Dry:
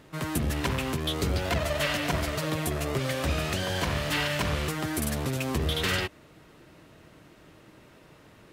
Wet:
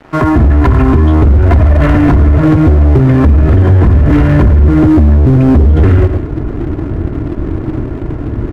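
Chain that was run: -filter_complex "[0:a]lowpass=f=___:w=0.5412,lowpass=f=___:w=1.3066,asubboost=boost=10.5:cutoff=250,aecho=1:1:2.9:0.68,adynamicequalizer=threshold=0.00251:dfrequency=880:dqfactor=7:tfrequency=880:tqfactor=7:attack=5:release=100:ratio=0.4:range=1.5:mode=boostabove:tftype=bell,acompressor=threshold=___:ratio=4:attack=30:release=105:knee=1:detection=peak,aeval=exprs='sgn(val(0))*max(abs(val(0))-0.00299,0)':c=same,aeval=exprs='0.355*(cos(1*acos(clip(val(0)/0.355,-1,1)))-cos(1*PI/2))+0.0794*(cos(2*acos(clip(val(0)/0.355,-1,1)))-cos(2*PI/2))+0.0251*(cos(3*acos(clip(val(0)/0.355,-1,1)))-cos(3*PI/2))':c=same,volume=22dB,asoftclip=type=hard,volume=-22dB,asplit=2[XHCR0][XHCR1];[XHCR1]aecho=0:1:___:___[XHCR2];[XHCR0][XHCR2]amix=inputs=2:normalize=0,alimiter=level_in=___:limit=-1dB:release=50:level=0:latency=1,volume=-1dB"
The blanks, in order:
1600, 1600, -22dB, 110, 0.178, 28dB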